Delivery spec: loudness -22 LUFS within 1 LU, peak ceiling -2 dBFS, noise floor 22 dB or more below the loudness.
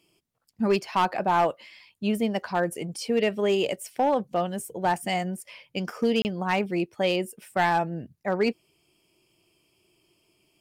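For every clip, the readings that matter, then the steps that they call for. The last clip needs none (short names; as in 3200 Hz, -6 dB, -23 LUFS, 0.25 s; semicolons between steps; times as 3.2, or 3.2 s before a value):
clipped 0.5%; flat tops at -15.5 dBFS; dropouts 1; longest dropout 29 ms; loudness -26.5 LUFS; peak -15.5 dBFS; loudness target -22.0 LUFS
-> clip repair -15.5 dBFS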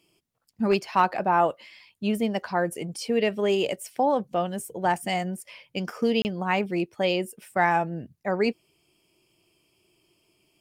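clipped 0.0%; dropouts 1; longest dropout 29 ms
-> interpolate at 6.22, 29 ms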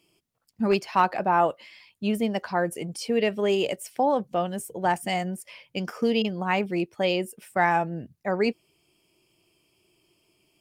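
dropouts 0; loudness -26.5 LUFS; peak -8.0 dBFS; loudness target -22.0 LUFS
-> gain +4.5 dB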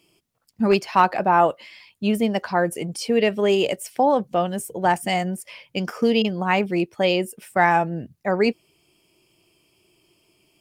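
loudness -22.0 LUFS; peak -3.5 dBFS; noise floor -69 dBFS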